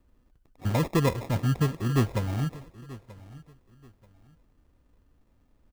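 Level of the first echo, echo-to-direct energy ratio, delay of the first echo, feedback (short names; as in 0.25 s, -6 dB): -19.0 dB, -18.5 dB, 0.933 s, 27%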